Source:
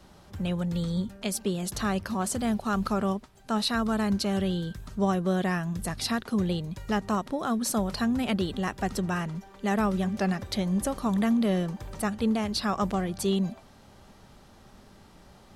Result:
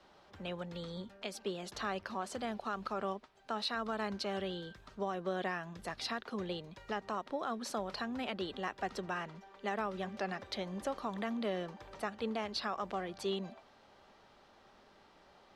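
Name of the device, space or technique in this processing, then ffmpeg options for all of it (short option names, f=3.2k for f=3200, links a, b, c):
DJ mixer with the lows and highs turned down: -filter_complex "[0:a]acrossover=split=330 5200:gain=0.178 1 0.126[a][b][c];[a][b][c]amix=inputs=3:normalize=0,alimiter=limit=-21dB:level=0:latency=1:release=129,volume=-4.5dB"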